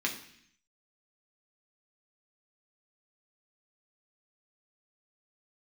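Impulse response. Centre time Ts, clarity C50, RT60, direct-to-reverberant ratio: 20 ms, 9.0 dB, 0.65 s, -1.0 dB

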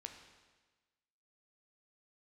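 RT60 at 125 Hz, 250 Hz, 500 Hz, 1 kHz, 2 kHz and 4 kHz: 1.3 s, 1.3 s, 1.3 s, 1.3 s, 1.3 s, 1.3 s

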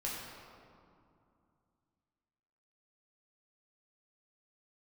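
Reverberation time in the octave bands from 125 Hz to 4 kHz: 3.3 s, 3.2 s, 2.4 s, 2.5 s, 1.7 s, 1.3 s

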